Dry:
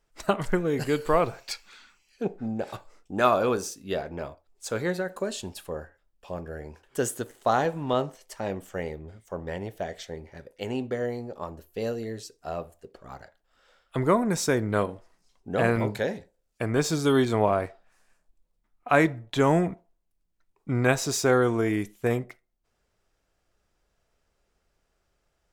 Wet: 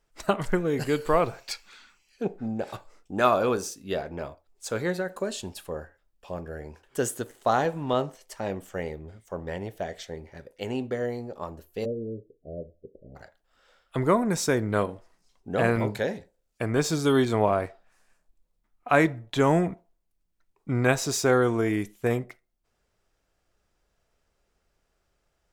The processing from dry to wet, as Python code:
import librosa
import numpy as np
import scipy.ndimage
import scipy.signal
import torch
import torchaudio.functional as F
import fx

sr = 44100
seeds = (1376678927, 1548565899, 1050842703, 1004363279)

y = fx.steep_lowpass(x, sr, hz=590.0, slope=72, at=(11.84, 13.15), fade=0.02)